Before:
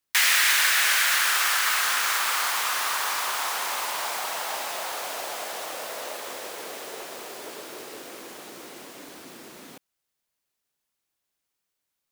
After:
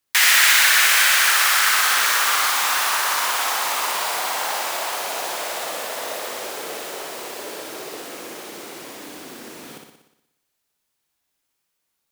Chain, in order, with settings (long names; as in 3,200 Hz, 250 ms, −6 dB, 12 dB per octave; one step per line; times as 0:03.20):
flutter between parallel walls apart 10.3 metres, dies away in 0.84 s
level +4 dB